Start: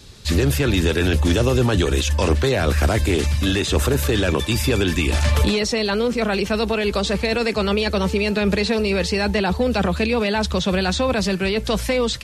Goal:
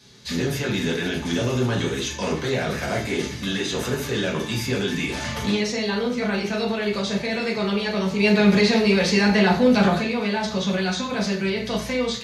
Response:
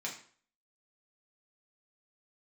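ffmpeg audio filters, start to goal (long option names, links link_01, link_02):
-filter_complex "[0:a]asettb=1/sr,asplit=3[link_01][link_02][link_03];[link_01]atrim=end=8.194[link_04];[link_02]atrim=start=8.19:end=10,asetpts=PTS-STARTPTS,afade=type=in:duration=0.004:curve=qsin,afade=type=out:start_time=1.806:duration=0.004:curve=qsin,acontrast=59[link_05];[link_03]atrim=start=9.996[link_06];[link_04][link_05]acrossfade=duration=0.004:curve1=hsin:curve2=qsin[link_07];[link_07][link_06]acrossfade=duration=0.004:curve1=qsin:curve2=hsin[link_08];[1:a]atrim=start_sample=2205,asetrate=40572,aresample=44100[link_09];[link_08][link_09]afir=irnorm=-1:irlink=0,volume=-5.5dB"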